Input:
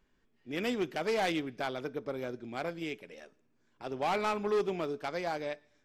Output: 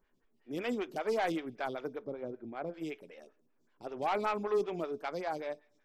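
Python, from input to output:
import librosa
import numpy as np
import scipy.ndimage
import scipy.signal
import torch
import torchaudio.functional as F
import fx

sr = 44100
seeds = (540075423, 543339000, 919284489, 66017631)

y = fx.lowpass(x, sr, hz=1100.0, slope=6, at=(2.04, 2.74))
y = fx.stagger_phaser(y, sr, hz=5.2)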